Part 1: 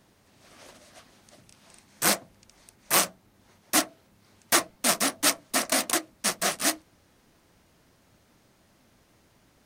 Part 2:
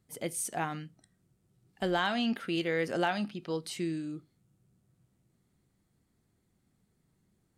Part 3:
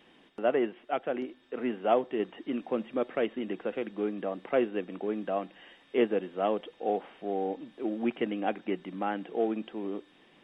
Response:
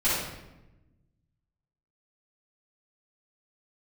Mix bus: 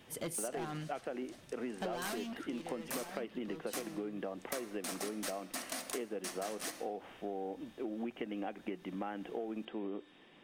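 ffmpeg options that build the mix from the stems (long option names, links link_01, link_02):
-filter_complex "[0:a]acompressor=threshold=-41dB:ratio=2,volume=24.5dB,asoftclip=hard,volume=-24.5dB,volume=-4dB,asplit=2[link_01][link_02];[link_02]volume=-20dB[link_03];[1:a]acontrast=34,asoftclip=type=hard:threshold=-28dB,volume=-4dB,afade=type=out:start_time=2.06:duration=0.45:silence=0.281838[link_04];[2:a]acompressor=threshold=-31dB:ratio=3,volume=-1dB[link_05];[3:a]atrim=start_sample=2205[link_06];[link_03][link_06]afir=irnorm=-1:irlink=0[link_07];[link_01][link_04][link_05][link_07]amix=inputs=4:normalize=0,acompressor=threshold=-36dB:ratio=6"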